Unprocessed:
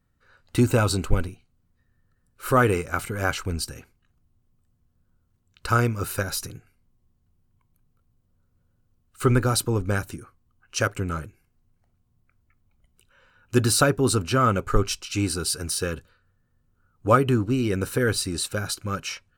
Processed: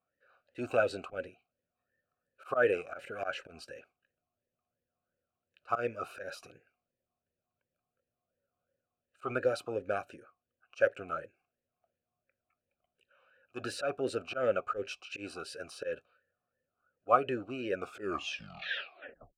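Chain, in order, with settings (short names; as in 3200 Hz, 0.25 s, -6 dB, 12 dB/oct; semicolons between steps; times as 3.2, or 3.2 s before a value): tape stop at the end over 1.64 s; auto swell 0.103 s; vowel sweep a-e 2.8 Hz; gain +5 dB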